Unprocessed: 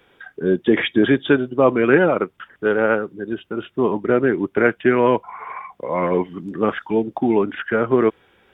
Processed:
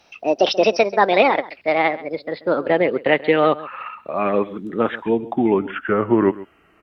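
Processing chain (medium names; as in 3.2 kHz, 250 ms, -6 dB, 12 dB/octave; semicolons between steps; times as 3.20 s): gliding tape speed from 169% -> 81%; echo from a far wall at 23 m, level -18 dB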